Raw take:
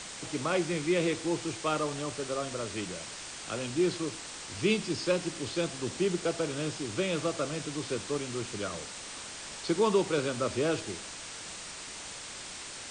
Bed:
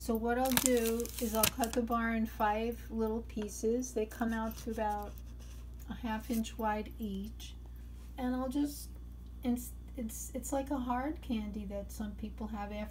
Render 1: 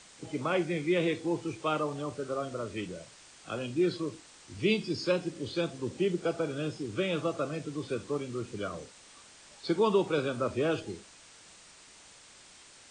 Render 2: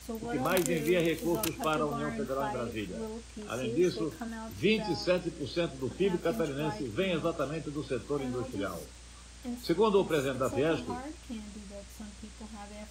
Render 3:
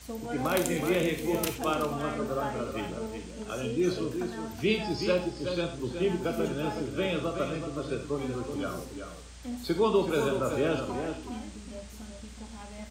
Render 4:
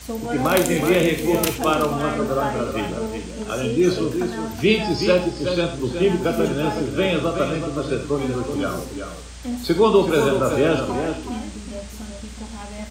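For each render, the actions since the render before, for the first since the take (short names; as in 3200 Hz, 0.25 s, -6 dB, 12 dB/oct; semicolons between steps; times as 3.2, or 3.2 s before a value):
noise print and reduce 12 dB
add bed -5 dB
outdoor echo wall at 64 m, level -7 dB; non-linear reverb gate 0.12 s flat, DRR 6.5 dB
gain +9.5 dB; limiter -2 dBFS, peak gain reduction 2.5 dB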